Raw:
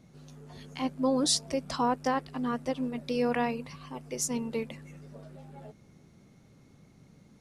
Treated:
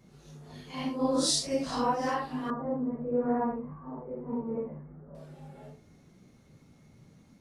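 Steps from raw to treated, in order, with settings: phase scrambler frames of 0.2 s; 2.5–5.15 steep low-pass 1400 Hz 36 dB/oct

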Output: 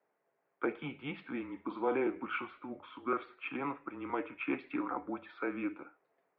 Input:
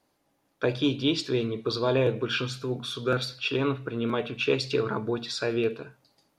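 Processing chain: mistuned SSB -140 Hz 490–2400 Hz; 1.43–1.96 flutter echo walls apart 8.2 m, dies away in 0.24 s; gain -4 dB

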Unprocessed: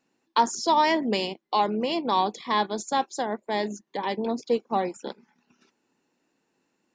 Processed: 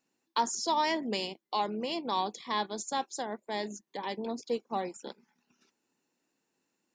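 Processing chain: high shelf 5200 Hz +10 dB; gain -8 dB

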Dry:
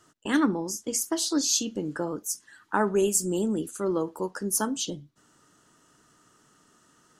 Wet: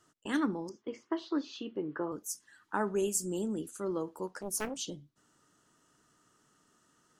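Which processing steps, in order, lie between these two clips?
0.69–2.12 speaker cabinet 120–3100 Hz, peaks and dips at 200 Hz -5 dB, 380 Hz +7 dB, 1100 Hz +8 dB, 2000 Hz +4 dB; 4.27–4.85 Doppler distortion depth 0.91 ms; gain -7.5 dB

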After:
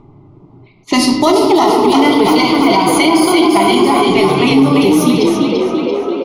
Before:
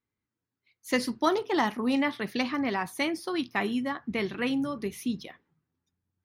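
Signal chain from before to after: 1.88–3.88 ripple EQ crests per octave 1.8, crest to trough 13 dB; shoebox room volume 920 m³, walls mixed, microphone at 1.3 m; gate -45 dBFS, range -16 dB; fixed phaser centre 330 Hz, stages 8; frequency-shifting echo 0.34 s, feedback 57%, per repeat +33 Hz, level -4.5 dB; upward compressor, threshold -29 dBFS; low shelf 180 Hz +3 dB; low-pass opened by the level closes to 770 Hz, open at -25.5 dBFS; maximiser +22 dB; gain -1 dB

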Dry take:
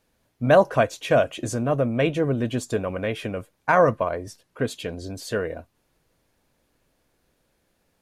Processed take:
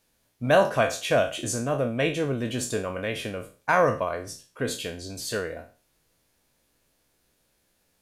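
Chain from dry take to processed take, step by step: spectral trails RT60 0.37 s; high shelf 2700 Hz +9 dB; gain -5 dB

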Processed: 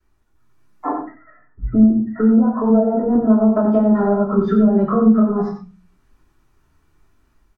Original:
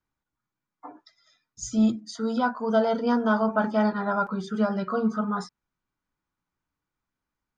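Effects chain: compressor 8:1, threshold -30 dBFS, peak gain reduction 14 dB; treble ducked by the level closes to 520 Hz, closed at -29.5 dBFS; 0.87–3.15 steep low-pass 2000 Hz 96 dB/oct; echo 90 ms -8.5 dB; reverb RT60 0.30 s, pre-delay 3 ms, DRR -14 dB; AGC gain up to 6 dB; dynamic EQ 420 Hz, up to -3 dB, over -21 dBFS, Q 1.2

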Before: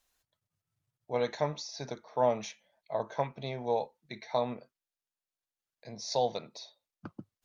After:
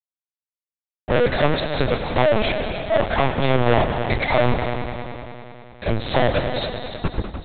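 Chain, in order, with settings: bin magnitudes rounded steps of 15 dB; in parallel at +2 dB: compressor 8:1, threshold -40 dBFS, peak gain reduction 17.5 dB; on the sum: fuzz box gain 38 dB, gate -47 dBFS; on a send: multi-head echo 99 ms, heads all three, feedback 64%, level -13 dB; on the sum: LPC vocoder at 8 kHz pitch kept; gain -1.5 dB

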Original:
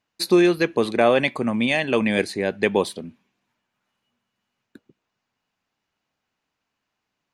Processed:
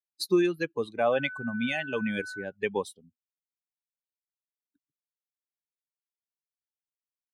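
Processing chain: per-bin expansion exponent 2; 1.12–2.43 whine 1500 Hz -32 dBFS; gain -5.5 dB

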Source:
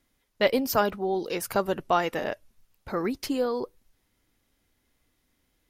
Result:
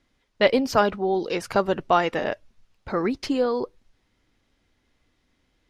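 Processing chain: LPF 5400 Hz 12 dB/oct; gain +4 dB

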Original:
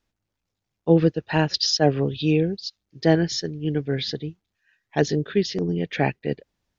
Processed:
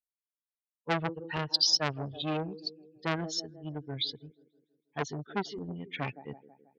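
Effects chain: per-bin expansion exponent 2; dynamic EQ 4100 Hz, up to +6 dB, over -42 dBFS, Q 1; band-limited delay 0.162 s, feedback 53%, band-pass 470 Hz, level -16 dB; core saturation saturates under 2100 Hz; gain -4.5 dB

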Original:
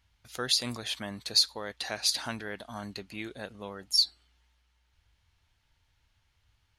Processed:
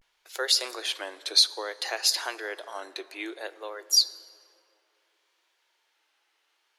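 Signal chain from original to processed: Chebyshev high-pass 330 Hz, order 6; vibrato 0.6 Hz 99 cents; plate-style reverb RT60 3 s, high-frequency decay 0.4×, DRR 16 dB; gain +4.5 dB

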